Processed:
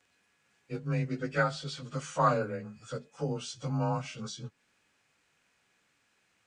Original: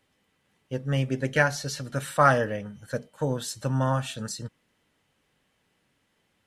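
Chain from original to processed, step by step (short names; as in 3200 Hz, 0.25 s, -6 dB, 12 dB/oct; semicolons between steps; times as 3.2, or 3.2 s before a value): inharmonic rescaling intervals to 92%; mismatched tape noise reduction encoder only; gain -4.5 dB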